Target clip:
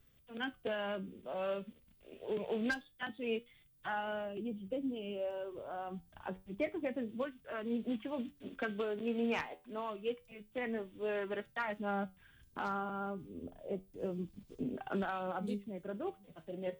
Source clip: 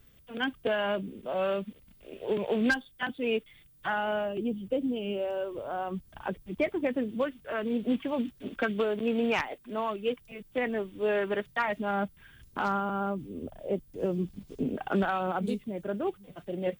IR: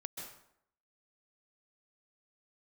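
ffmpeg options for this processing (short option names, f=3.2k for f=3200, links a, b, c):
-af "flanger=delay=7.6:depth=5.5:regen=76:speed=0.27:shape=triangular,volume=-4dB"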